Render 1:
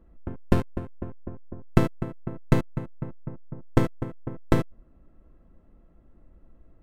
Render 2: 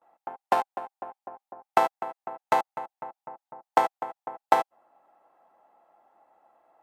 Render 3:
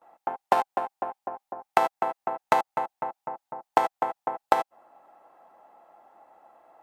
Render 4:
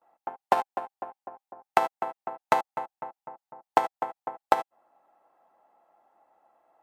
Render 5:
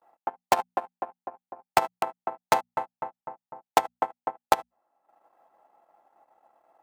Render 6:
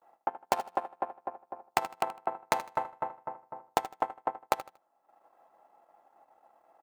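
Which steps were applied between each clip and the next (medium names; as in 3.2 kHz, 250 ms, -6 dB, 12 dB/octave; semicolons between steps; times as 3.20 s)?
gate with hold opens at -51 dBFS; resonant high-pass 800 Hz, resonance Q 10; trim +1.5 dB
compression 6:1, threshold -24 dBFS, peak gain reduction 11 dB; trim +7 dB
upward expansion 1.5:1, over -35 dBFS
hum notches 60/120/180/240 Hz; transient shaper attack +2 dB, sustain -11 dB; in parallel at -5 dB: integer overflow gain 14 dB; on the sum: trim -1.5 dB
compression 6:1, threshold -24 dBFS, peak gain reduction 10.5 dB; feedback delay 78 ms, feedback 27%, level -14.5 dB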